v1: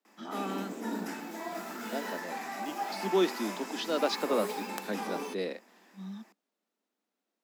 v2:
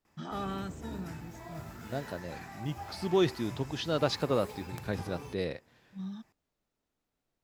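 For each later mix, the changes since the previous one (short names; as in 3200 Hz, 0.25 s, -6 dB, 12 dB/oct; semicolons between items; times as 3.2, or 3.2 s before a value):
background -9.0 dB; master: remove steep high-pass 190 Hz 96 dB/oct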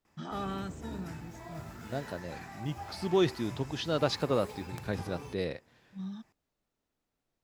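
background: add bell 14000 Hz -6 dB 0.28 oct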